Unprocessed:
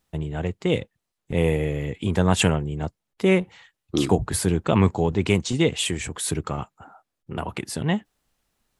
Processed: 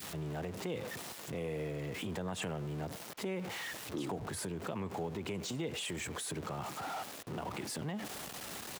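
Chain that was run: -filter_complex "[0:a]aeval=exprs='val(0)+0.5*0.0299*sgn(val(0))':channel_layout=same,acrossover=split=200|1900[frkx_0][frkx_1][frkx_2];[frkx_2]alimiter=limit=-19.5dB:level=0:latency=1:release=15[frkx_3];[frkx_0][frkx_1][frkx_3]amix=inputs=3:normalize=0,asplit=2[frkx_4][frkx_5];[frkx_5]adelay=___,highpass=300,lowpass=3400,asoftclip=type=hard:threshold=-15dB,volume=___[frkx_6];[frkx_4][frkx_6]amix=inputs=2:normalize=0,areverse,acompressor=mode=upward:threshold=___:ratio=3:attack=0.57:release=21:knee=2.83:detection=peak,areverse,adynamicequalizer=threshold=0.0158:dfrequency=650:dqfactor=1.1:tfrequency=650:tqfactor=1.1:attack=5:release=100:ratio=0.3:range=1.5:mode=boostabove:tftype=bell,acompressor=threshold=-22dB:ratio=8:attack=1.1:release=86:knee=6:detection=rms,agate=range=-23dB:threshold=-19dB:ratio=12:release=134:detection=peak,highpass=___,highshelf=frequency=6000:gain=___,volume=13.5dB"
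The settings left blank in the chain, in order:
100, -20dB, -25dB, 120, -2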